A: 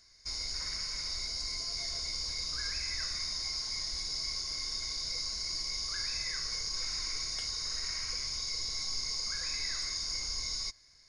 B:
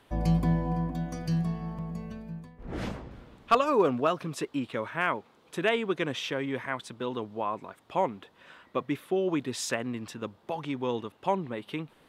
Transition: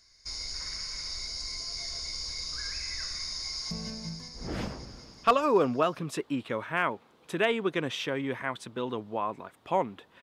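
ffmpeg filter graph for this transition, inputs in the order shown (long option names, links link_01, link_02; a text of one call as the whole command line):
ffmpeg -i cue0.wav -i cue1.wav -filter_complex "[0:a]apad=whole_dur=10.22,atrim=end=10.22,atrim=end=3.712[link_01];[1:a]atrim=start=1.948:end=8.46[link_02];[link_01][link_02]acrossfade=duration=0.004:curve1=hsin:curve2=hsin,asplit=2[link_03][link_04];[link_04]afade=type=in:start_time=3.46:duration=0.01,afade=type=out:start_time=3.71:duration=0.01,aecho=0:1:190|380|570|760|950|1140|1330|1520|1710|1900|2090|2280:0.530884|0.424708|0.339766|0.271813|0.21745|0.17396|0.139168|0.111335|0.0890676|0.0712541|0.0570033|0.0456026[link_05];[link_03][link_05]amix=inputs=2:normalize=0" out.wav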